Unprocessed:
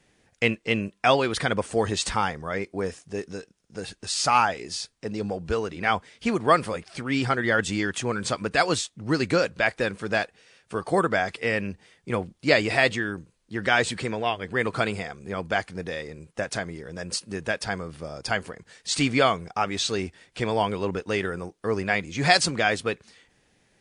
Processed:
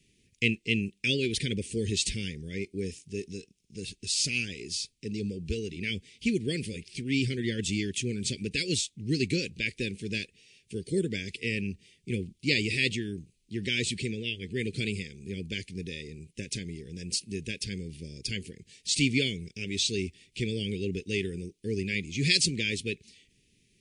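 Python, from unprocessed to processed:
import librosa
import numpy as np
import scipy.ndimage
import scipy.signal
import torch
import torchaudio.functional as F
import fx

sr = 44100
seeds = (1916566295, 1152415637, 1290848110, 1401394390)

y = scipy.signal.sosfilt(scipy.signal.ellip(3, 1.0, 50, [380.0, 2400.0], 'bandstop', fs=sr, output='sos'), x)
y = fx.peak_eq(y, sr, hz=320.0, db=-6.0, octaves=0.28)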